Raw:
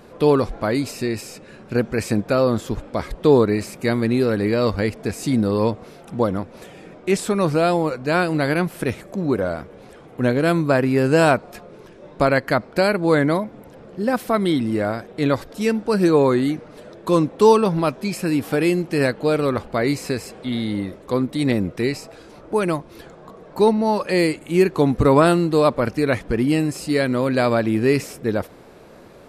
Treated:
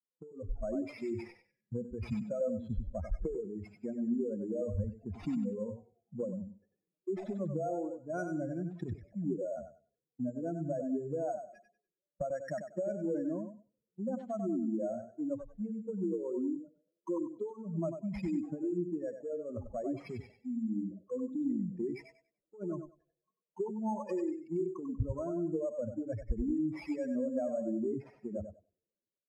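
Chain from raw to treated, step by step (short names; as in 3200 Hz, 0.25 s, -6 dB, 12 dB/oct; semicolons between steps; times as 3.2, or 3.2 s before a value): spectral contrast raised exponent 3.1; gate -38 dBFS, range -14 dB; compressor 20:1, threshold -22 dBFS, peak gain reduction 14 dB; careless resampling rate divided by 6×, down none, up hold; tape spacing loss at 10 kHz 24 dB; feedback echo 96 ms, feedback 31%, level -6 dB; spectral noise reduction 12 dB; three-band expander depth 70%; gain -8.5 dB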